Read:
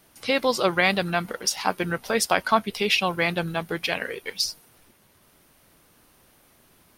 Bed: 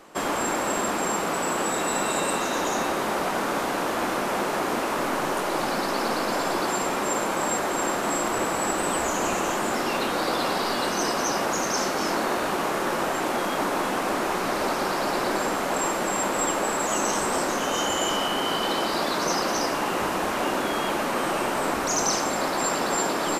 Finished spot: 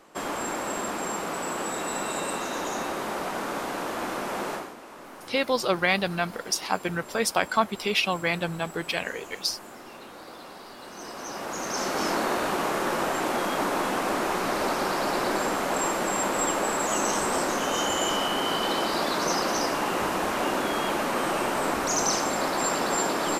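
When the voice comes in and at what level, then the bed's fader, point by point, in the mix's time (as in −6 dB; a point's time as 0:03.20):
5.05 s, −2.5 dB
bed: 0:04.53 −5 dB
0:04.75 −18.5 dB
0:10.77 −18.5 dB
0:11.99 −1 dB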